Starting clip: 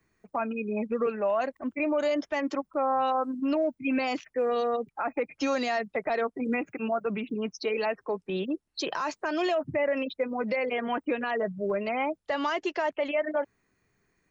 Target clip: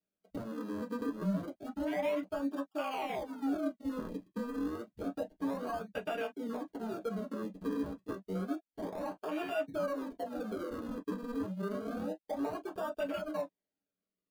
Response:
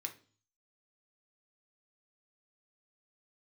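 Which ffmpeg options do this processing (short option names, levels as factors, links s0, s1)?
-filter_complex "[0:a]acompressor=threshold=0.0398:ratio=5,acrusher=samples=41:mix=1:aa=0.000001:lfo=1:lforange=41:lforate=0.29,afwtdn=0.0158[s0];[1:a]atrim=start_sample=2205,atrim=end_sample=3969,asetrate=79380,aresample=44100[s1];[s0][s1]afir=irnorm=-1:irlink=0,volume=1.78"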